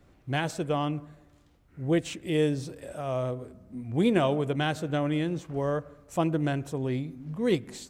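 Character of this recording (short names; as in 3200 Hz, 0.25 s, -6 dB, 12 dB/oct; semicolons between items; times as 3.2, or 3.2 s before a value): noise floor -61 dBFS; spectral tilt -6.0 dB/oct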